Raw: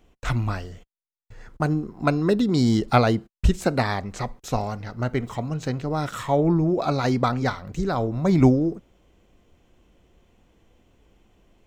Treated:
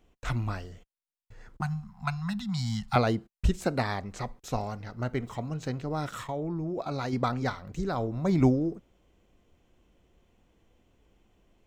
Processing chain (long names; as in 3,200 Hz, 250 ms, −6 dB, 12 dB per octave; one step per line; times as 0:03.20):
0:01.61–0:02.96: elliptic band-stop filter 200–780 Hz, stop band 40 dB
0:06.24–0:07.13: output level in coarse steps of 13 dB
level −6 dB